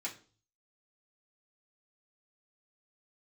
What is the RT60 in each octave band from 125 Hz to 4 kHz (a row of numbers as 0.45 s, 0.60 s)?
0.75 s, 0.45 s, 0.45 s, 0.35 s, 0.35 s, 0.40 s